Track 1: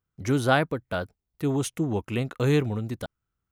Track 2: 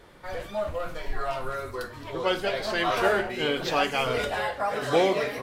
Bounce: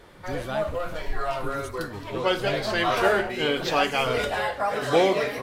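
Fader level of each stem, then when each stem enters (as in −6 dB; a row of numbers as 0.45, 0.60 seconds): −12.0, +2.0 decibels; 0.00, 0.00 seconds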